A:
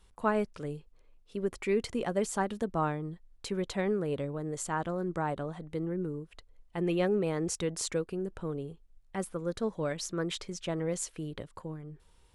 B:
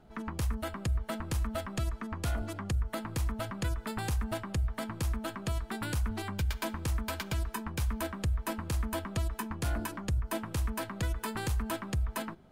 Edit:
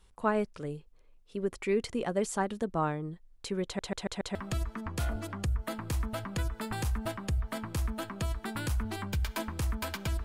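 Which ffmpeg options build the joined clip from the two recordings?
-filter_complex "[0:a]apad=whole_dur=10.24,atrim=end=10.24,asplit=5[s0][s1][s2][s3][s4];[s0]atrim=end=3.792[s5];[s1]atrim=start=3.648:end=3.792[s6];[s2]atrim=start=3.648:end=3.792[s7];[s3]atrim=start=3.648:end=3.792[s8];[s4]atrim=start=3.648:end=3.792[s9];[1:a]atrim=start=1.608:end=7.5[s10];[s5][s6]acrossfade=d=0.004:c1=hsin:c2=hsin[s11];[s11][s7]acrossfade=d=0.004:c1=hsin:c2=hsin[s12];[s12][s8]acrossfade=d=0.004:c1=hsin:c2=hsin[s13];[s13][s9]acrossfade=d=0.004:c1=hsin:c2=hsin[s14];[s14][s10]acrossfade=d=0.004:c1=hsin:c2=hsin"

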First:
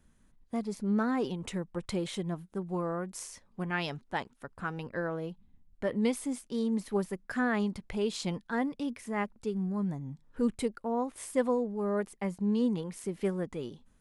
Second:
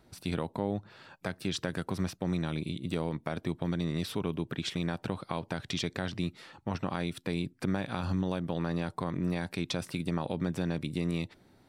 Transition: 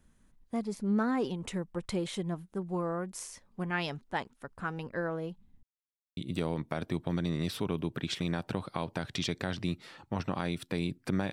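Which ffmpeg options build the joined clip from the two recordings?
-filter_complex "[0:a]apad=whole_dur=11.32,atrim=end=11.32,asplit=2[s0][s1];[s0]atrim=end=5.63,asetpts=PTS-STARTPTS,afade=t=out:st=5.626:d=0.004:c=hsin[s2];[s1]atrim=start=5.63:end=6.17,asetpts=PTS-STARTPTS,volume=0[s3];[1:a]atrim=start=2.72:end=7.87,asetpts=PTS-STARTPTS,afade=t=in:d=0.004:c=hsin[s4];[s2][s3][s4]concat=n=3:v=0:a=1"

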